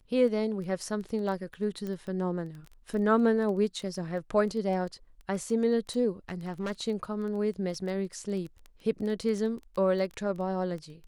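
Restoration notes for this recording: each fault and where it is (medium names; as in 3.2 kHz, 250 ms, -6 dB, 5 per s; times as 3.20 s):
crackle 11 per s -34 dBFS
1.87 s: pop -25 dBFS
6.29–6.72 s: clipped -28.5 dBFS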